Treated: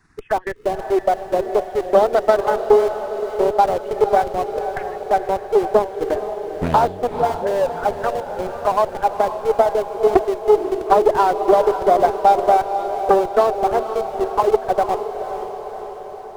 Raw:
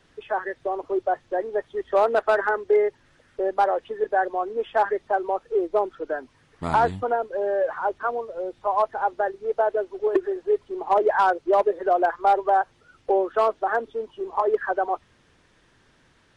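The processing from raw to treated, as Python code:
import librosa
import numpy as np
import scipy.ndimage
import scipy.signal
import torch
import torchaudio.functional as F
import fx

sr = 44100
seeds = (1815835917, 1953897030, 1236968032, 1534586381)

p1 = fx.transient(x, sr, attack_db=6, sustain_db=-7)
p2 = fx.auto_wah(p1, sr, base_hz=230.0, top_hz=2100.0, q=4.6, full_db=-14.5, direction='up', at=(4.46, 5.11))
p3 = fx.env_phaser(p2, sr, low_hz=540.0, high_hz=2000.0, full_db=-16.0)
p4 = fx.schmitt(p3, sr, flips_db=-27.5)
p5 = p3 + (p4 * librosa.db_to_amplitude(-11.5))
p6 = fx.dispersion(p5, sr, late='highs', ms=126.0, hz=330.0, at=(7.07, 7.51))
p7 = p6 + fx.echo_diffused(p6, sr, ms=507, feedback_pct=61, wet_db=-9, dry=0)
p8 = fx.doppler_dist(p7, sr, depth_ms=0.55)
y = p8 * librosa.db_to_amplitude(3.5)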